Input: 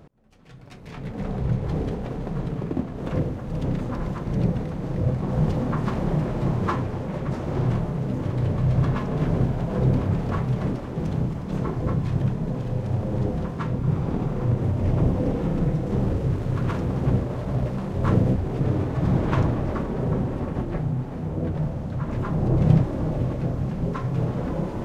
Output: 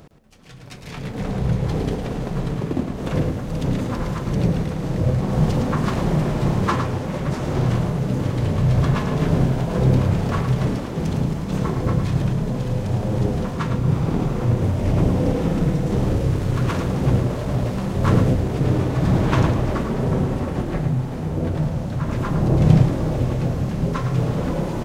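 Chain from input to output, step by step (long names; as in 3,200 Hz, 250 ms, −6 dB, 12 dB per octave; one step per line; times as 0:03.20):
high-shelf EQ 2,800 Hz +10 dB
single-tap delay 109 ms −7.5 dB
level +3 dB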